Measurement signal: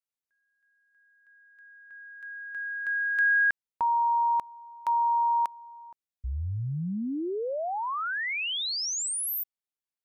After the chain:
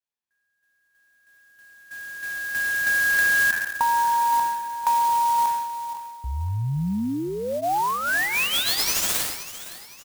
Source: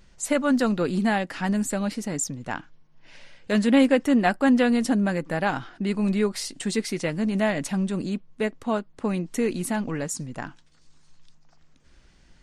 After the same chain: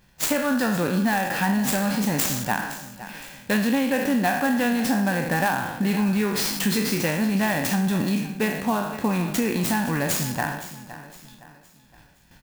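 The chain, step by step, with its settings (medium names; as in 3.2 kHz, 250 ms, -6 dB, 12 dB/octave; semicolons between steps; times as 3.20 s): spectral sustain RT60 0.64 s; gate -50 dBFS, range -8 dB; high-pass 120 Hz 6 dB/octave; band-stop 640 Hz, Q 12; comb 1.2 ms, depth 44%; compression 6:1, threshold -26 dBFS; feedback delay 514 ms, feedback 39%, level -14.5 dB; resampled via 22.05 kHz; sampling jitter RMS 0.029 ms; trim +6.5 dB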